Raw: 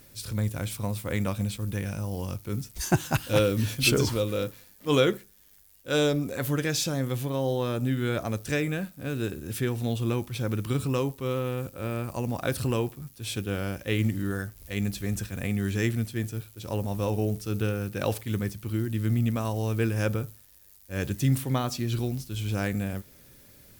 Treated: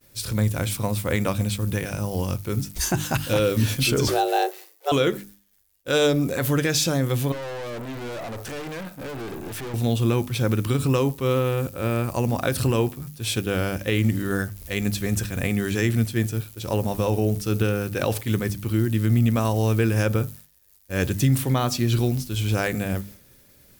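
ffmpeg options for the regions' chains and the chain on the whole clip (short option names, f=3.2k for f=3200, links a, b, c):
-filter_complex "[0:a]asettb=1/sr,asplit=3[a][b][c];[a]atrim=end=4.084[d];[b]atrim=start=4.08:end=4.92,asetpts=PTS-STARTPTS,afade=t=in:d=0.004:c=qsin,afade=t=out:st=0.836:d=0.004:c=qsin,highpass=64,afreqshift=260[e];[c]atrim=start=4.916[f];[d][e]acrossfade=d=0.004:c1=hsin:c2=qsin[g];[g][f]acrossfade=d=0.004:c1=qsin:c2=hsin,asettb=1/sr,asplit=3[h][i][j];[h]atrim=end=7.324[k];[i]atrim=start=7.32:end=9.74,asetpts=PTS-STARTPTS,afade=t=in:d=0.004:c=qsin,afade=t=out:st=2.416:d=0.004:c=qsin,equalizer=f=790:w=0.43:g=12,acompressor=threshold=-22dB:ratio=3:attack=3.2:release=140:knee=1:detection=peak,aeval=exprs='(tanh(89.1*val(0)+0.25)-tanh(0.25))/89.1':c=same[l];[j]atrim=start=9.736[m];[k][l]acrossfade=d=0.004:c1=hsin:c2=qsin[n];[n][m]acrossfade=d=0.004:c1=qsin:c2=hsin,agate=range=-33dB:threshold=-46dB:ratio=3:detection=peak,bandreject=f=50:t=h:w=6,bandreject=f=100:t=h:w=6,bandreject=f=150:t=h:w=6,bandreject=f=200:t=h:w=6,bandreject=f=250:t=h:w=6,bandreject=f=300:t=h:w=6,alimiter=limit=-19dB:level=0:latency=1:release=96,volume=7.5dB"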